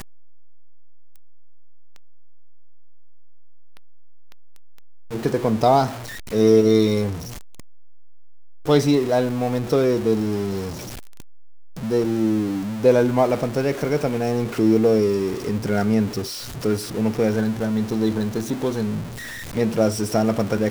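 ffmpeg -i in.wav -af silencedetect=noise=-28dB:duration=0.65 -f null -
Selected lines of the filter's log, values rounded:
silence_start: 0.00
silence_end: 5.13 | silence_duration: 5.13
silence_start: 7.19
silence_end: 8.67 | silence_duration: 1.49
silence_start: 10.73
silence_end: 11.79 | silence_duration: 1.05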